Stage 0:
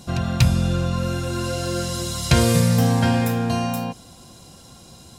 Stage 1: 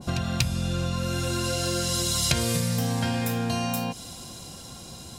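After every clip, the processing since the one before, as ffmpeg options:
ffmpeg -i in.wav -af "acompressor=threshold=-28dB:ratio=4,adynamicequalizer=threshold=0.00282:dfrequency=2000:dqfactor=0.7:tfrequency=2000:tqfactor=0.7:attack=5:release=100:ratio=0.375:range=3:mode=boostabove:tftype=highshelf,volume=2.5dB" out.wav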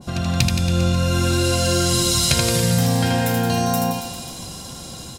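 ffmpeg -i in.wav -filter_complex "[0:a]dynaudnorm=framelen=130:gausssize=3:maxgain=5dB,asplit=2[link_01][link_02];[link_02]aecho=0:1:80|172|277.8|399.5|539.4:0.631|0.398|0.251|0.158|0.1[link_03];[link_01][link_03]amix=inputs=2:normalize=0" out.wav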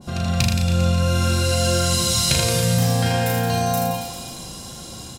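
ffmpeg -i in.wav -filter_complex "[0:a]asplit=2[link_01][link_02];[link_02]adelay=36,volume=-3.5dB[link_03];[link_01][link_03]amix=inputs=2:normalize=0,volume=-2.5dB" out.wav

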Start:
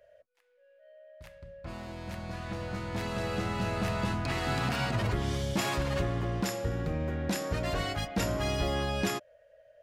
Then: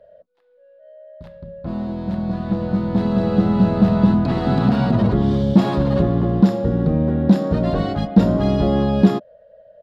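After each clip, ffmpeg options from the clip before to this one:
ffmpeg -i in.wav -af "firequalizer=gain_entry='entry(100,0);entry(200,14);entry(290,6);entry(2300,-14);entry(3800,-4);entry(6200,-19);entry(9700,-21)':delay=0.05:min_phase=1,volume=8.5dB" out.wav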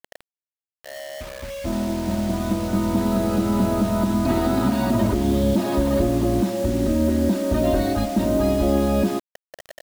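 ffmpeg -i in.wav -af "aecho=1:1:3.2:0.96,alimiter=limit=-10.5dB:level=0:latency=1:release=366,acrusher=bits=5:mix=0:aa=0.000001" out.wav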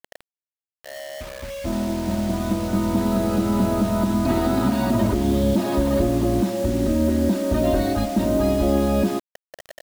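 ffmpeg -i in.wav -af anull out.wav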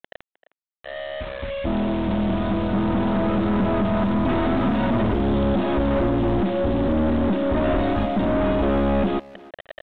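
ffmpeg -i in.wav -filter_complex "[0:a]aeval=exprs='(tanh(14.1*val(0)+0.3)-tanh(0.3))/14.1':channel_layout=same,aresample=8000,aeval=exprs='sgn(val(0))*max(abs(val(0))-0.00316,0)':channel_layout=same,aresample=44100,asplit=2[link_01][link_02];[link_02]adelay=310,highpass=300,lowpass=3400,asoftclip=type=hard:threshold=-30dB,volume=-16dB[link_03];[link_01][link_03]amix=inputs=2:normalize=0,volume=6dB" out.wav

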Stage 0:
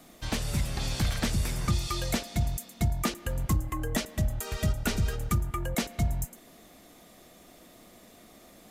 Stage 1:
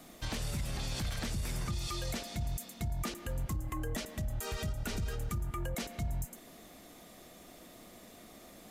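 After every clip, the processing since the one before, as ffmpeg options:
ffmpeg -i in.wav -af "acompressor=threshold=-29dB:ratio=6,alimiter=level_in=4dB:limit=-24dB:level=0:latency=1:release=33,volume=-4dB" out.wav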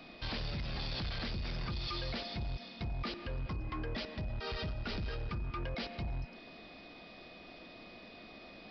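ffmpeg -i in.wav -af "bass=frequency=250:gain=-2,treble=frequency=4000:gain=5,aresample=11025,asoftclip=type=hard:threshold=-36dB,aresample=44100,aeval=exprs='val(0)+0.00126*sin(2*PI*2500*n/s)':channel_layout=same,volume=1.5dB" out.wav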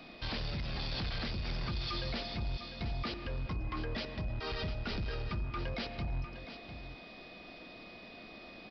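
ffmpeg -i in.wav -af "aecho=1:1:702:0.282,volume=1dB" out.wav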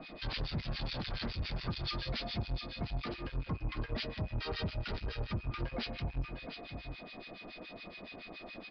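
ffmpeg -i in.wav -filter_complex "[0:a]flanger=delay=6.3:depth=4.7:regen=-63:speed=0.31:shape=triangular,aresample=11025,asoftclip=type=tanh:threshold=-39.5dB,aresample=44100,acrossover=split=1400[link_01][link_02];[link_01]aeval=exprs='val(0)*(1-1/2+1/2*cos(2*PI*7.1*n/s))':channel_layout=same[link_03];[link_02]aeval=exprs='val(0)*(1-1/2-1/2*cos(2*PI*7.1*n/s))':channel_layout=same[link_04];[link_03][link_04]amix=inputs=2:normalize=0,volume=11dB" out.wav

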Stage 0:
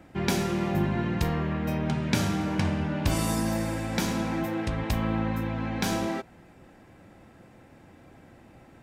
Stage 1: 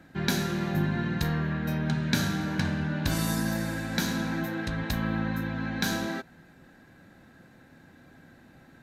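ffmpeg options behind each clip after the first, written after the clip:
ffmpeg -i in.wav -af "equalizer=frequency=160:width_type=o:width=0.33:gain=7,equalizer=frequency=250:width_type=o:width=0.33:gain=6,equalizer=frequency=1600:width_type=o:width=0.33:gain=12,equalizer=frequency=4000:width_type=o:width=0.33:gain=11,equalizer=frequency=6300:width_type=o:width=0.33:gain=5,equalizer=frequency=12500:width_type=o:width=0.33:gain=10,volume=-5dB" out.wav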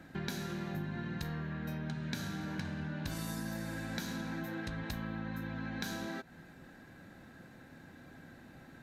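ffmpeg -i in.wav -af "acompressor=threshold=-38dB:ratio=4" out.wav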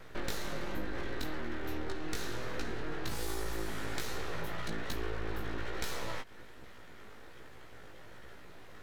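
ffmpeg -i in.wav -af "aeval=exprs='abs(val(0))':channel_layout=same,flanger=delay=15.5:depth=3.8:speed=1.2,volume=7dB" out.wav

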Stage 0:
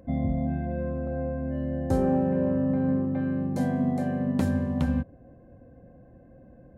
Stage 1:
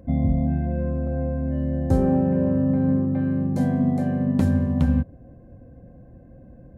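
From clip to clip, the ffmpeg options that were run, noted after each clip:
ffmpeg -i in.wav -af "lowshelf=frequency=250:gain=8.5" out.wav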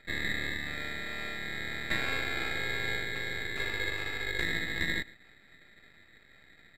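ffmpeg -i in.wav -filter_complex "[0:a]asplit=2[link_01][link_02];[link_02]adelay=116.6,volume=-22dB,highshelf=frequency=4000:gain=-2.62[link_03];[link_01][link_03]amix=inputs=2:normalize=0,aeval=exprs='val(0)*sin(2*PI*1900*n/s)':channel_layout=same,aeval=exprs='max(val(0),0)':channel_layout=same,volume=-6dB" out.wav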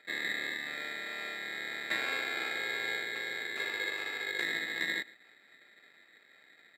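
ffmpeg -i in.wav -af "highpass=350,volume=-1dB" out.wav

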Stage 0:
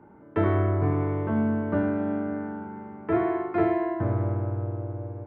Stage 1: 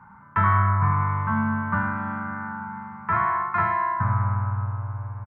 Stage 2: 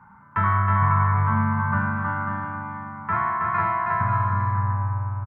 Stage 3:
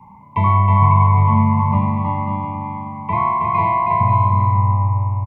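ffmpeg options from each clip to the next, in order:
ffmpeg -i in.wav -af "firequalizer=gain_entry='entry(200,0);entry(320,-26);entry(620,-15);entry(1000,12);entry(2900,-3)':delay=0.05:min_phase=1,volume=3.5dB" out.wav
ffmpeg -i in.wav -af "aecho=1:1:320|544|700.8|810.6|887.4:0.631|0.398|0.251|0.158|0.1,volume=-1.5dB" out.wav
ffmpeg -i in.wav -af "asuperstop=centerf=1500:order=20:qfactor=1.7,volume=8dB" out.wav

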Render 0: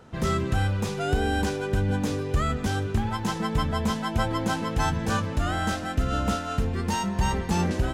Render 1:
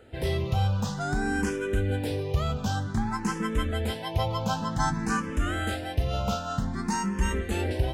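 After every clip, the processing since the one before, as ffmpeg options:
ffmpeg -i in.wav -filter_complex "[0:a]asplit=2[link_01][link_02];[link_02]afreqshift=0.53[link_03];[link_01][link_03]amix=inputs=2:normalize=1,volume=1dB" out.wav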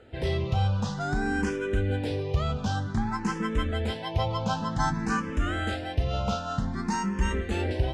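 ffmpeg -i in.wav -af "lowpass=6100" out.wav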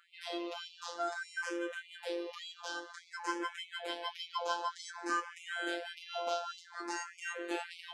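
ffmpeg -i in.wav -af "afftfilt=real='hypot(re,im)*cos(PI*b)':imag='0':win_size=1024:overlap=0.75,afftfilt=real='re*gte(b*sr/1024,230*pow(2100/230,0.5+0.5*sin(2*PI*1.7*pts/sr)))':imag='im*gte(b*sr/1024,230*pow(2100/230,0.5+0.5*sin(2*PI*1.7*pts/sr)))':win_size=1024:overlap=0.75,volume=-1dB" out.wav

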